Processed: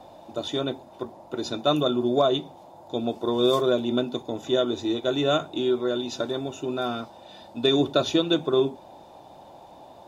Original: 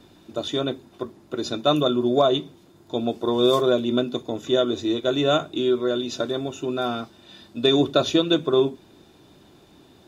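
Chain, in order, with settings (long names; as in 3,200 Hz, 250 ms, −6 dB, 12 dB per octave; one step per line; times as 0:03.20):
noise in a band 520–940 Hz −46 dBFS
level −2.5 dB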